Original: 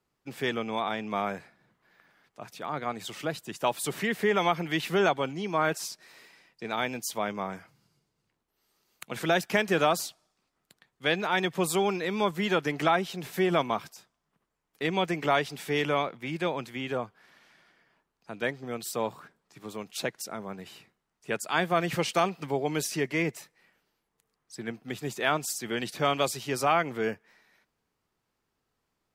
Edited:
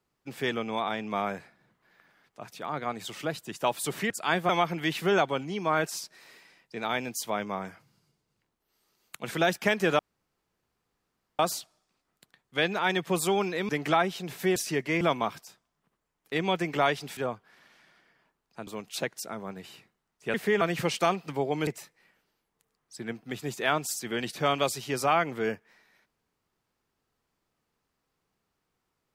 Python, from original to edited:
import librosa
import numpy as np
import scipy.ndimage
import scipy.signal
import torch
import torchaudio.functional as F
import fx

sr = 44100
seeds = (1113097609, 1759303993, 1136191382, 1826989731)

y = fx.edit(x, sr, fx.swap(start_s=4.1, length_s=0.27, other_s=21.36, other_length_s=0.39),
    fx.insert_room_tone(at_s=9.87, length_s=1.4),
    fx.cut(start_s=12.17, length_s=0.46),
    fx.cut(start_s=15.66, length_s=1.22),
    fx.cut(start_s=18.38, length_s=1.31),
    fx.move(start_s=22.81, length_s=0.45, to_s=13.5), tone=tone)